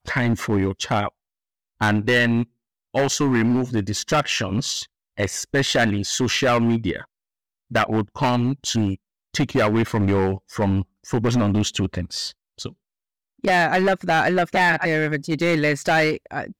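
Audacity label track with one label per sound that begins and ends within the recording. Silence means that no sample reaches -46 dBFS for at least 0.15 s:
1.800000	2.450000	sound
2.940000	4.860000	sound
5.180000	7.050000	sound
7.710000	8.960000	sound
9.340000	10.840000	sound
11.040000	12.320000	sound
12.580000	12.730000	sound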